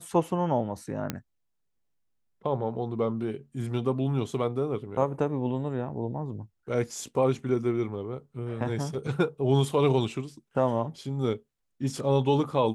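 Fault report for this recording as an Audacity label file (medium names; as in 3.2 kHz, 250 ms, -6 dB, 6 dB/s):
1.100000	1.100000	pop -14 dBFS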